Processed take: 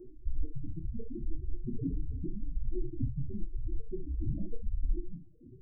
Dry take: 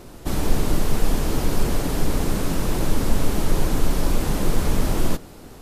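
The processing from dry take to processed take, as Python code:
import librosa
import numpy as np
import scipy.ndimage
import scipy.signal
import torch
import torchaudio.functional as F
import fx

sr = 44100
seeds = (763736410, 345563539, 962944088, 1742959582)

y = fx.dereverb_blind(x, sr, rt60_s=0.66)
y = fx.over_compress(y, sr, threshold_db=-20.0, ratio=-0.5)
y = fx.spec_topn(y, sr, count=4)
y = fx.comb_fb(y, sr, f0_hz=120.0, decay_s=0.21, harmonics='odd', damping=0.0, mix_pct=80)
y = fx.room_early_taps(y, sr, ms=(29, 63), db=(-7.0, -10.0))
y = fx.stagger_phaser(y, sr, hz=0.89)
y = y * librosa.db_to_amplitude(7.0)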